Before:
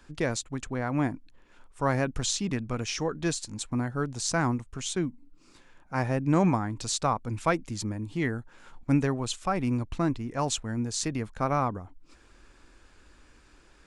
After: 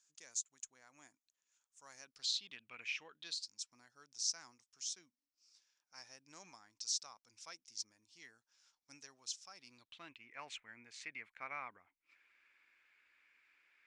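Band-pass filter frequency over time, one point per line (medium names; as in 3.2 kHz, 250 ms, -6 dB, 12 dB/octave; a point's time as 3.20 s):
band-pass filter, Q 5.5
1.93 s 6.6 kHz
2.85 s 2.2 kHz
3.53 s 5.5 kHz
9.53 s 5.5 kHz
10.31 s 2.2 kHz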